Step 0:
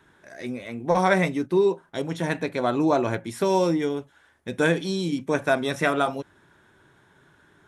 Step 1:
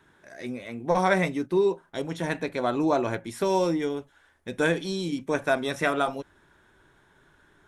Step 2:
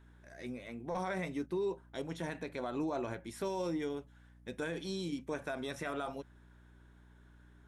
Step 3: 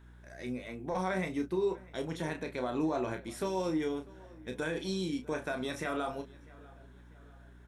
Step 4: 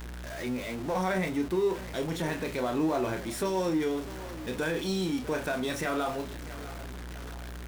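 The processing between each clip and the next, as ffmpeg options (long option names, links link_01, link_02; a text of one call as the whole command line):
ffmpeg -i in.wav -af "asubboost=boost=5:cutoff=51,volume=-2dB" out.wav
ffmpeg -i in.wav -af "alimiter=limit=-19.5dB:level=0:latency=1:release=62,aeval=exprs='val(0)+0.00316*(sin(2*PI*60*n/s)+sin(2*PI*2*60*n/s)/2+sin(2*PI*3*60*n/s)/3+sin(2*PI*4*60*n/s)/4+sin(2*PI*5*60*n/s)/5)':channel_layout=same,volume=-8.5dB" out.wav
ffmpeg -i in.wav -filter_complex "[0:a]asplit=2[link_01][link_02];[link_02]adelay=32,volume=-7.5dB[link_03];[link_01][link_03]amix=inputs=2:normalize=0,asplit=2[link_04][link_05];[link_05]adelay=646,lowpass=frequency=3600:poles=1,volume=-22dB,asplit=2[link_06][link_07];[link_07]adelay=646,lowpass=frequency=3600:poles=1,volume=0.49,asplit=2[link_08][link_09];[link_09]adelay=646,lowpass=frequency=3600:poles=1,volume=0.49[link_10];[link_04][link_06][link_08][link_10]amix=inputs=4:normalize=0,volume=3dB" out.wav
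ffmpeg -i in.wav -af "aeval=exprs='val(0)+0.5*0.0119*sgn(val(0))':channel_layout=same,volume=2.5dB" out.wav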